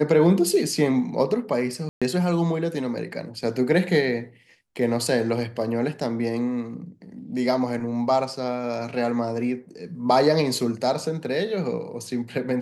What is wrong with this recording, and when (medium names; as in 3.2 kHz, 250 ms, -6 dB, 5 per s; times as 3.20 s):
1.89–2.02 s: dropout 126 ms